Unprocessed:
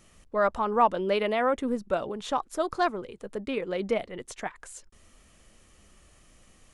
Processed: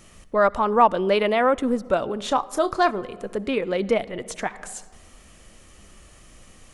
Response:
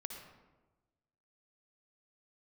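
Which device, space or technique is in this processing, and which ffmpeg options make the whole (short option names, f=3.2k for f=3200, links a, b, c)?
compressed reverb return: -filter_complex "[0:a]asettb=1/sr,asplit=3[a][b][c];[a]atrim=end=2.194[d];[b]atrim=start=2.19:end=3.02,asetpts=PTS-STARTPTS,afade=t=in:d=0.004:c=qsin,afade=t=out:st=0.826:d=0.004:c=qsin,asplit=2[e][f];[f]adelay=30,volume=-12.5dB[g];[e][g]amix=inputs=2:normalize=0,atrim=end_sample=36603[h];[c]atrim=start=3.016[i];[d][h]acrossfade=d=0.004:c1=hsin:c2=qsin[j];[j][i]acrossfade=d=0.004:c1=qsin:c2=hsin,asplit=2[k][l];[1:a]atrim=start_sample=2205[m];[l][m]afir=irnorm=-1:irlink=0,acompressor=threshold=-39dB:ratio=5,volume=-3.5dB[n];[k][n]amix=inputs=2:normalize=0,volume=5dB"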